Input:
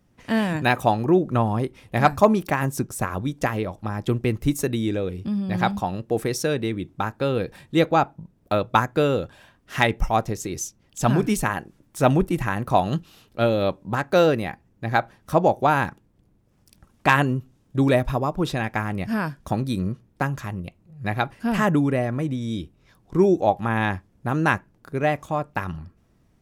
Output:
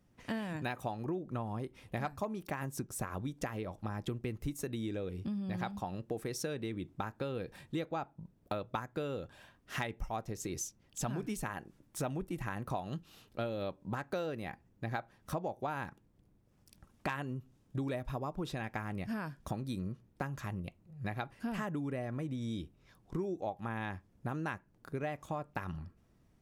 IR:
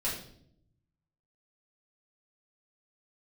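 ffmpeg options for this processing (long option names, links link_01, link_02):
-af "acompressor=threshold=-28dB:ratio=6,volume=-6.5dB"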